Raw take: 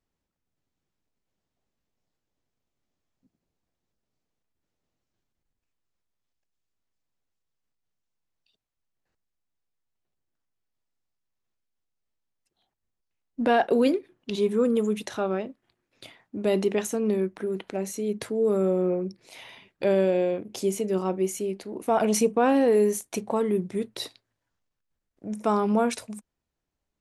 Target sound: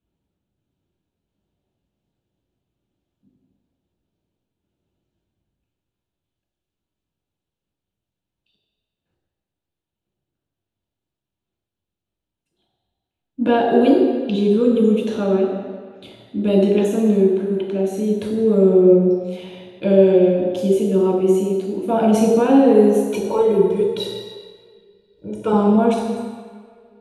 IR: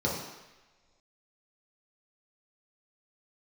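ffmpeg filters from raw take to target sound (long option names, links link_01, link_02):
-filter_complex "[0:a]asettb=1/sr,asplit=3[link_01][link_02][link_03];[link_01]atrim=end=23.114[link_04];[link_02]atrim=start=23.11:end=25.53,asetpts=PTS-STARTPTS,afade=type=in:duration=0.004:curve=qsin,afade=type=out:start_time=2.416:duration=0.004:curve=qsin,aecho=1:1:2.1:0.98,atrim=end_sample=106722[link_05];[link_03]atrim=start=25.526[link_06];[link_04][link_05]acrossfade=duration=0.004:curve1=hsin:curve2=qsin[link_07];[link_07][link_06]acrossfade=duration=0.004:curve1=qsin:curve2=hsin[link_08];[1:a]atrim=start_sample=2205,asetrate=29547,aresample=44100[link_09];[link_08][link_09]afir=irnorm=-1:irlink=0,volume=-8dB"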